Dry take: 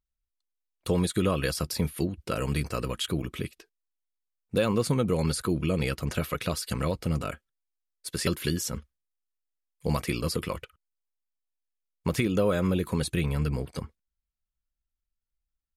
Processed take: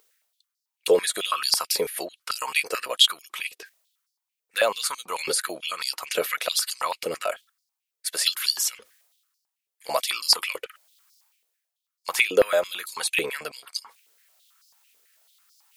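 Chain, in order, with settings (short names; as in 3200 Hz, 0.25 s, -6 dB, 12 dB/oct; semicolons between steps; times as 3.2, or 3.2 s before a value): tilt +2 dB/oct; reverse; upward compressor, threshold -45 dBFS; reverse; stepped high-pass 9.1 Hz 450–4900 Hz; gain +2.5 dB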